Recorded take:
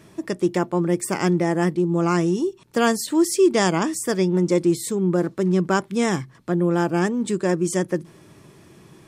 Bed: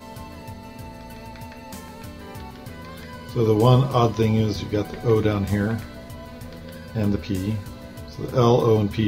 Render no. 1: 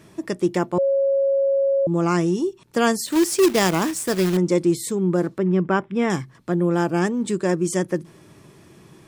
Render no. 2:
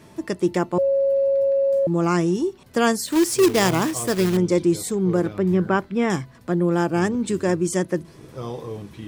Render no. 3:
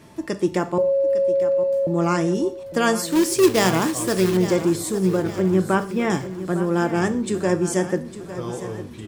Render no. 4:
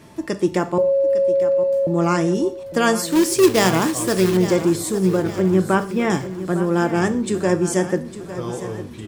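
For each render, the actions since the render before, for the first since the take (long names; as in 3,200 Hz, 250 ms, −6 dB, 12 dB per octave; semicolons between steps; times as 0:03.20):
0:00.78–0:01.87: beep over 549 Hz −16 dBFS; 0:03.06–0:04.37: log-companded quantiser 4 bits; 0:05.38–0:06.10: Savitzky-Golay smoothing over 25 samples
mix in bed −15 dB
repeating echo 855 ms, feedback 47%, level −13 dB; reverb whose tail is shaped and stops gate 160 ms falling, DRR 9.5 dB
level +2 dB; brickwall limiter −2 dBFS, peak gain reduction 0.5 dB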